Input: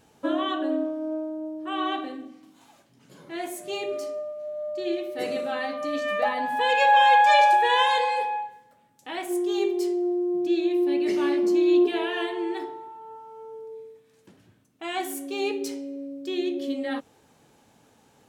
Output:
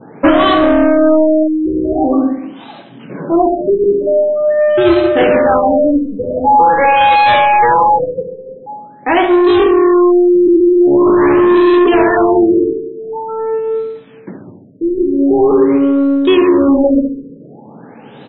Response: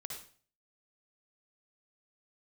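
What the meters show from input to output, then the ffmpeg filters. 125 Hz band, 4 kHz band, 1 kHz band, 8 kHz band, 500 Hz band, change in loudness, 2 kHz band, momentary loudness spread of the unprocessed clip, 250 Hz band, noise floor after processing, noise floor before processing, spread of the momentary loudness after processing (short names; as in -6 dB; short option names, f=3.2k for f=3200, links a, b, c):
n/a, +6.0 dB, +10.5 dB, under -35 dB, +16.5 dB, +13.5 dB, +8.5 dB, 19 LU, +17.0 dB, -37 dBFS, -61 dBFS, 12 LU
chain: -filter_complex "[0:a]highpass=f=140:w=0.5412,highpass=f=140:w=1.3066,asplit=2[a][b];[b]adynamicsmooth=sensitivity=5.5:basefreq=650,volume=-2dB[c];[a][c]amix=inputs=2:normalize=0,highshelf=f=3.6k:g=6.5,acompressor=threshold=-17dB:ratio=6,adynamicequalizer=threshold=0.0126:dfrequency=2600:dqfactor=0.89:tfrequency=2600:tqfactor=0.89:attack=5:release=100:ratio=0.375:range=3:mode=cutabove:tftype=bell,asoftclip=type=tanh:threshold=-24.5dB,asplit=2[d][e];[e]adelay=69,lowpass=f=2.3k:p=1,volume=-7dB,asplit=2[f][g];[g]adelay=69,lowpass=f=2.3k:p=1,volume=0.53,asplit=2[h][i];[i]adelay=69,lowpass=f=2.3k:p=1,volume=0.53,asplit=2[j][k];[k]adelay=69,lowpass=f=2.3k:p=1,volume=0.53,asplit=2[l][m];[m]adelay=69,lowpass=f=2.3k:p=1,volume=0.53,asplit=2[n][o];[o]adelay=69,lowpass=f=2.3k:p=1,volume=0.53[p];[f][h][j][l][n][p]amix=inputs=6:normalize=0[q];[d][q]amix=inputs=2:normalize=0,alimiter=level_in=23.5dB:limit=-1dB:release=50:level=0:latency=1,afftfilt=real='re*lt(b*sr/1024,520*pow(4200/520,0.5+0.5*sin(2*PI*0.45*pts/sr)))':imag='im*lt(b*sr/1024,520*pow(4200/520,0.5+0.5*sin(2*PI*0.45*pts/sr)))':win_size=1024:overlap=0.75,volume=-2.5dB"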